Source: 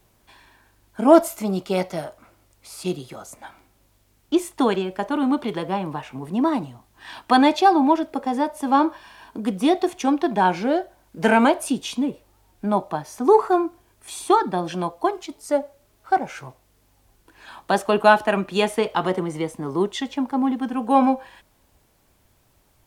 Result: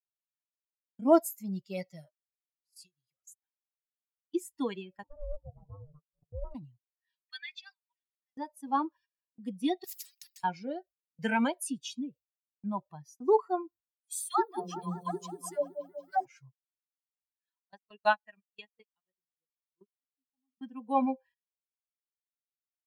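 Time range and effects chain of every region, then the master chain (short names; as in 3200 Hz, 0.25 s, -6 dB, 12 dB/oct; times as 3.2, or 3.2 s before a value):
2.76–4.35 high shelf 2100 Hz +6.5 dB + compressor 2.5:1, threshold -37 dBFS
5.03–6.55 Chebyshev low-pass 570 Hz + de-hum 82.46 Hz, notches 4 + ring modulator 300 Hz
7.16–8.37 ladder high-pass 1500 Hz, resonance 35% + high shelf 6600 Hz -3.5 dB + comb 6.5 ms, depth 36%
9.84–10.44 HPF 480 Hz + compressor 5:1, threshold -25 dBFS + spectral compressor 10:1
14.12–16.26 high shelf 9300 Hz +11.5 dB + dispersion lows, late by 0.132 s, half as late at 480 Hz + repeats that get brighter 0.188 s, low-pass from 750 Hz, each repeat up 1 oct, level -3 dB
17.62–20.58 echo 0.11 s -16.5 dB + upward expander 2.5:1, over -28 dBFS
whole clip: per-bin expansion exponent 2; gate -48 dBFS, range -25 dB; high shelf 8800 Hz +9 dB; gain -7.5 dB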